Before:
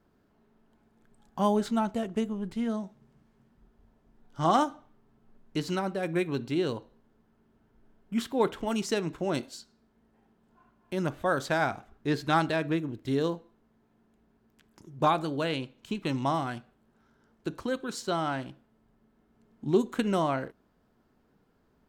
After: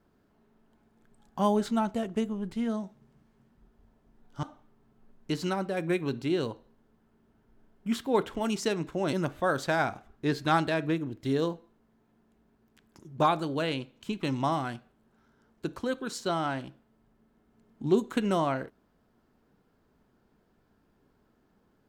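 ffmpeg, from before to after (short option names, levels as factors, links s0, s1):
-filter_complex "[0:a]asplit=3[s0][s1][s2];[s0]atrim=end=4.432[s3];[s1]atrim=start=4.688:end=9.392[s4];[s2]atrim=start=10.948[s5];[s3][s4]acrossfade=d=0.004:c1=hsin:c2=hsin[s6];[s6][s5]acrossfade=d=0.004:c1=hsin:c2=hsin"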